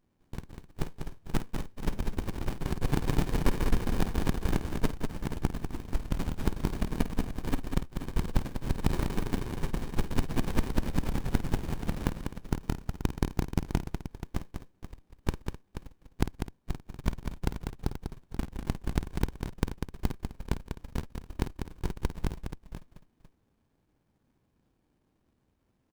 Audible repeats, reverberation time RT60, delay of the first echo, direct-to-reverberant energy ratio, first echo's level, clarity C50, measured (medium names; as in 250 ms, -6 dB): 4, no reverb, 51 ms, no reverb, -12.0 dB, no reverb